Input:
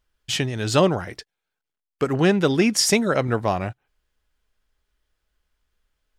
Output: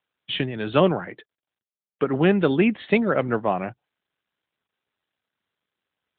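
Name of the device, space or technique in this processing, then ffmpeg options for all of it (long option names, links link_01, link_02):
mobile call with aggressive noise cancelling: -filter_complex "[0:a]asplit=3[link_01][link_02][link_03];[link_01]afade=type=out:start_time=2.08:duration=0.02[link_04];[link_02]equalizer=frequency=11000:width_type=o:width=0.64:gain=-6,afade=type=in:start_time=2.08:duration=0.02,afade=type=out:start_time=3.44:duration=0.02[link_05];[link_03]afade=type=in:start_time=3.44:duration=0.02[link_06];[link_04][link_05][link_06]amix=inputs=3:normalize=0,highpass=frequency=140:width=0.5412,highpass=frequency=140:width=1.3066,afftdn=noise_reduction=15:noise_floor=-46" -ar 8000 -c:a libopencore_amrnb -b:a 12200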